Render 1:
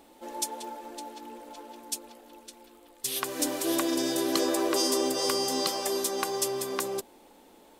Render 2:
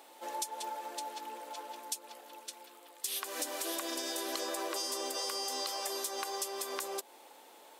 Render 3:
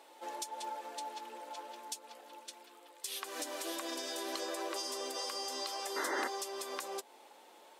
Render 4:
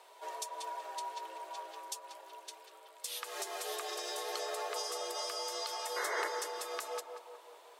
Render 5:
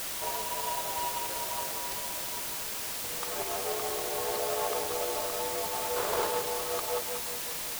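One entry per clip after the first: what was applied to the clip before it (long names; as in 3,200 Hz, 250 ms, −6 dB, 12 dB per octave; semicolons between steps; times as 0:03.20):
high-pass filter 600 Hz 12 dB per octave; in parallel at +2 dB: brickwall limiter −21.5 dBFS, peak gain reduction 10 dB; on the sum: downward compressor 4 to 1, threshold −31 dBFS, peak gain reduction 10 dB; level −4 dB
high-shelf EQ 11,000 Hz −10.5 dB; sound drawn into the spectrogram noise, 0:05.96–0:06.28, 220–2,100 Hz −35 dBFS; flanger 0.33 Hz, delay 1.9 ms, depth 3.8 ms, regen −64%; level +2.5 dB
frequency shifter +94 Hz; tape delay 189 ms, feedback 61%, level −6.5 dB, low-pass 1,800 Hz
running median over 25 samples; in parallel at −5 dB: bit-depth reduction 6 bits, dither triangular; on the sum: level +5 dB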